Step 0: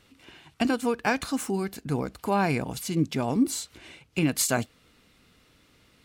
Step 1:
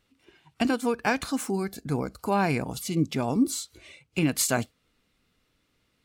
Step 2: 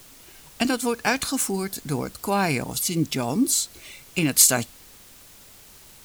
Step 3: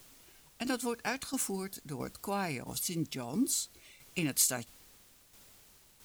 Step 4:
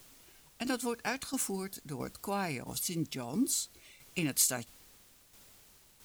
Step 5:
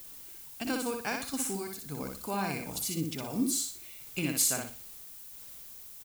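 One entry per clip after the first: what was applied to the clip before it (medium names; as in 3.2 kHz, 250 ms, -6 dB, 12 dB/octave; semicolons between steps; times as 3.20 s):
spectral noise reduction 11 dB
added noise pink -55 dBFS; treble shelf 3.5 kHz +12 dB; trim +1 dB
tremolo saw down 1.5 Hz, depth 55%; trim -8.5 dB
no audible change
feedback delay 61 ms, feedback 31%, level -4 dB; added noise violet -48 dBFS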